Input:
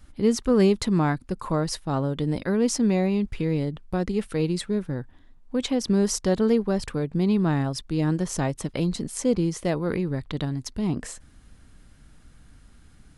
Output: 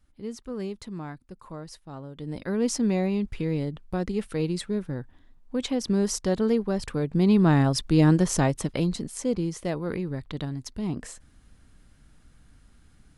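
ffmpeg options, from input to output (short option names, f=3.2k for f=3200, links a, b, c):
-af "volume=6dB,afade=t=in:st=2.13:d=0.51:silence=0.251189,afade=t=in:st=6.79:d=1.15:silence=0.375837,afade=t=out:st=7.94:d=1.19:silence=0.316228"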